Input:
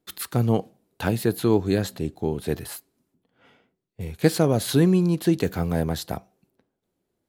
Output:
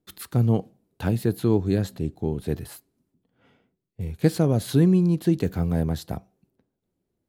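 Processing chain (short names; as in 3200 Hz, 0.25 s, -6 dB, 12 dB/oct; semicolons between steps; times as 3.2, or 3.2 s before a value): low shelf 330 Hz +10 dB; gain -6.5 dB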